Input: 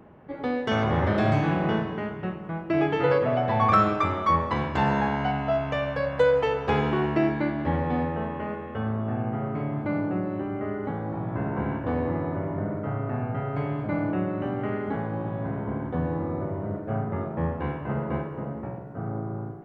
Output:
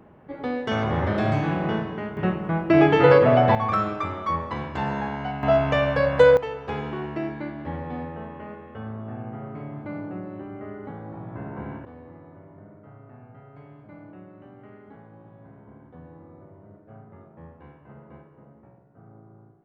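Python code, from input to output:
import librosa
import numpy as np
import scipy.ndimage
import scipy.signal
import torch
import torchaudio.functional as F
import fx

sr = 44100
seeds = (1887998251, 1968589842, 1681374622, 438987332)

y = fx.gain(x, sr, db=fx.steps((0.0, -0.5), (2.17, 7.5), (3.55, -4.0), (5.43, 6.0), (6.37, -6.5), (11.85, -18.0)))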